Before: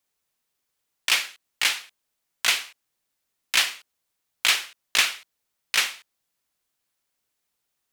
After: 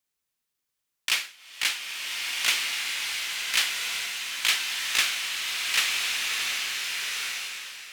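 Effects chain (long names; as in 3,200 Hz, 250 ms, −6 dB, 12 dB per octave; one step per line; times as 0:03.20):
parametric band 650 Hz −4.5 dB 1.6 octaves
slow-attack reverb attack 1,470 ms, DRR −2 dB
level −3.5 dB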